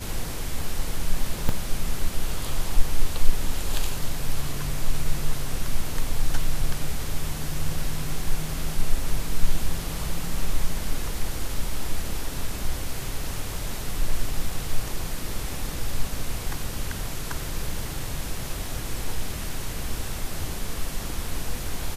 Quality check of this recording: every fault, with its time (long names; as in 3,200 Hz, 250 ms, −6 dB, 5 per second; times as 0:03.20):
0:01.49: drop-out 2.8 ms